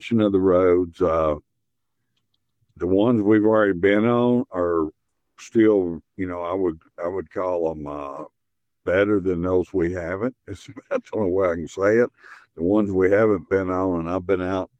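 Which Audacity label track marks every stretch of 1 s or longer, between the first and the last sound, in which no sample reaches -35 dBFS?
1.380000	2.810000	silence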